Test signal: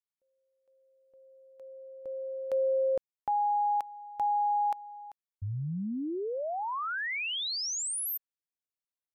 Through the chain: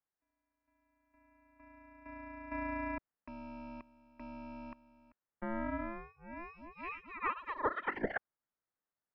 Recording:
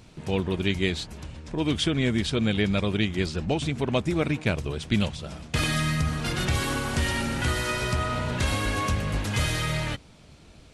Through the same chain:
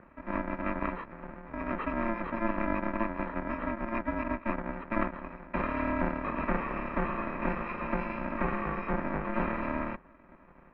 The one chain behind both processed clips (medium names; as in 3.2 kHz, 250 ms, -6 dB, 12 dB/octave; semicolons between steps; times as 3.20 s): bit-reversed sample order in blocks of 128 samples; mistuned SSB -240 Hz 270–2100 Hz; trim +6.5 dB